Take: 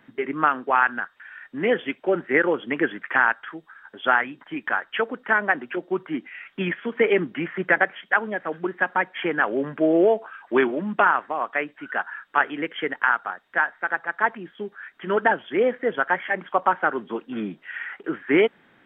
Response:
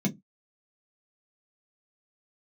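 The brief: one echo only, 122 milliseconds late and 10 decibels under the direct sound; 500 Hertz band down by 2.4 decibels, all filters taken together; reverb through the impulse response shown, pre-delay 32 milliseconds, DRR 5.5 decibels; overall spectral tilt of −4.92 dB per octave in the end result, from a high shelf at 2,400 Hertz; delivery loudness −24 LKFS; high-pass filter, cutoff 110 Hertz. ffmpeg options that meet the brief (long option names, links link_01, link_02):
-filter_complex "[0:a]highpass=110,equalizer=frequency=500:width_type=o:gain=-3.5,highshelf=frequency=2400:gain=8,aecho=1:1:122:0.316,asplit=2[link_01][link_02];[1:a]atrim=start_sample=2205,adelay=32[link_03];[link_02][link_03]afir=irnorm=-1:irlink=0,volume=-10.5dB[link_04];[link_01][link_04]amix=inputs=2:normalize=0,volume=-5dB"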